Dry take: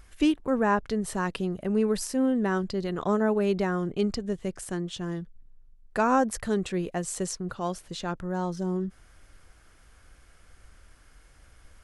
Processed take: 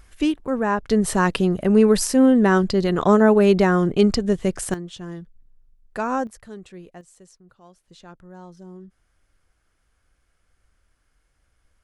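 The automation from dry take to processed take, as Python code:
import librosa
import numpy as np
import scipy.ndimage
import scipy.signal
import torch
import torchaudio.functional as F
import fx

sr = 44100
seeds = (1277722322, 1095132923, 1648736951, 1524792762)

y = fx.gain(x, sr, db=fx.steps((0.0, 2.0), (0.9, 10.0), (4.74, -1.5), (6.27, -11.5), (7.01, -19.0), (7.88, -12.0)))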